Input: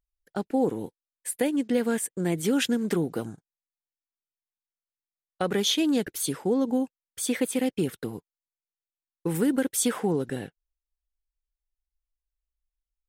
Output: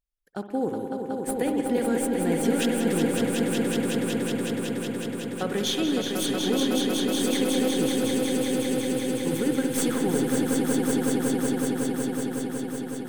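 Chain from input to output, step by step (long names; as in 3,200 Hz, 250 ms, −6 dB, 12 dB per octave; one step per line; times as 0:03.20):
stylus tracing distortion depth 0.03 ms
echo that builds up and dies away 185 ms, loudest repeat 5, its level −5 dB
spring reverb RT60 2.5 s, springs 59 ms, chirp 70 ms, DRR 7 dB
level −3 dB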